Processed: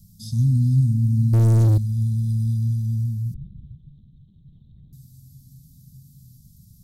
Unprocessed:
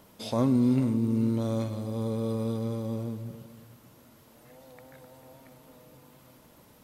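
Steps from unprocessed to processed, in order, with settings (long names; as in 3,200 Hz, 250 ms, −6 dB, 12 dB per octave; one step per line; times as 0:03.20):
inverse Chebyshev band-stop filter 320–2,600 Hz, stop band 40 dB
0:01.33–0:01.78: leveller curve on the samples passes 5
0:03.34–0:04.93: linear-prediction vocoder at 8 kHz whisper
low-shelf EQ 330 Hz +11 dB
level +4 dB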